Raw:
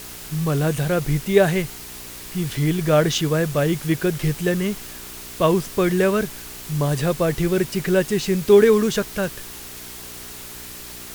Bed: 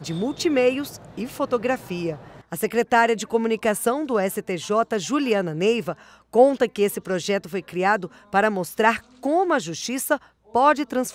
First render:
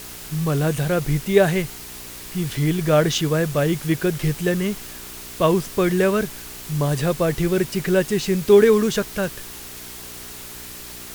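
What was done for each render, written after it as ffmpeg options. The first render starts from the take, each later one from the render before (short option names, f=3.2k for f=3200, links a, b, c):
-af anull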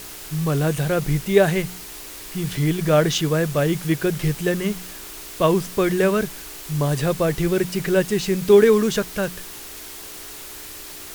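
-af "bandreject=f=60:t=h:w=4,bandreject=f=120:t=h:w=4,bandreject=f=180:t=h:w=4,bandreject=f=240:t=h:w=4"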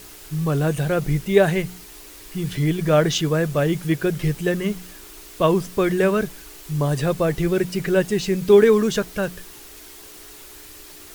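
-af "afftdn=nr=6:nf=-37"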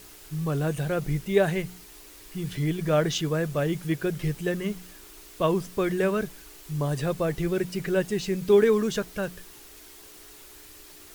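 -af "volume=-6dB"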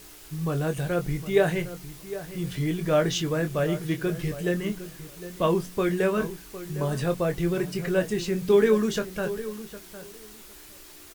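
-filter_complex "[0:a]asplit=2[a][b];[b]adelay=23,volume=-8dB[c];[a][c]amix=inputs=2:normalize=0,asplit=2[d][e];[e]adelay=758,lowpass=f=2k:p=1,volume=-13.5dB,asplit=2[f][g];[g]adelay=758,lowpass=f=2k:p=1,volume=0.16[h];[d][f][h]amix=inputs=3:normalize=0"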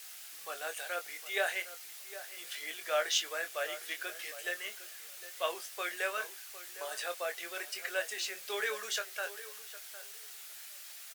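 -af "highpass=f=750:w=0.5412,highpass=f=750:w=1.3066,equalizer=f=1k:t=o:w=0.5:g=-11.5"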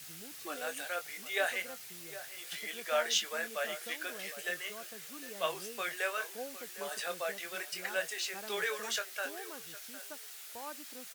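-filter_complex "[1:a]volume=-28.5dB[a];[0:a][a]amix=inputs=2:normalize=0"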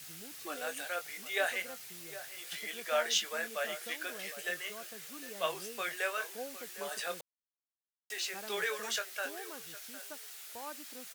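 -filter_complex "[0:a]asplit=3[a][b][c];[a]atrim=end=7.21,asetpts=PTS-STARTPTS,afade=t=out:st=7.206:d=0.004:c=hsin[d];[b]atrim=start=7.21:end=8.1,asetpts=PTS-STARTPTS,volume=0[e];[c]atrim=start=8.1,asetpts=PTS-STARTPTS,afade=t=in:d=0.004:c=hsin[f];[d][e][f]concat=n=3:v=0:a=1"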